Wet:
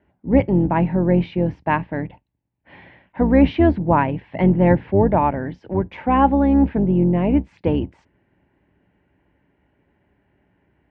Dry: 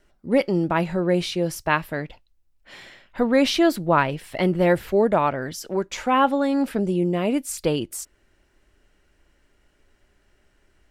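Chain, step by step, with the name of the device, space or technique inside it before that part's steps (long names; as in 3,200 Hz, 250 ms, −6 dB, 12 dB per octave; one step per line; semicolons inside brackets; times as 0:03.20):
sub-octave bass pedal (sub-octave generator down 2 octaves, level +2 dB; loudspeaker in its box 63–2,400 Hz, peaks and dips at 120 Hz +4 dB, 180 Hz +7 dB, 280 Hz +6 dB, 880 Hz +7 dB, 1,300 Hz −9 dB)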